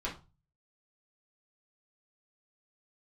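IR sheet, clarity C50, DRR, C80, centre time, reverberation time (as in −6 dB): 10.0 dB, −6.5 dB, 17.0 dB, 21 ms, 0.30 s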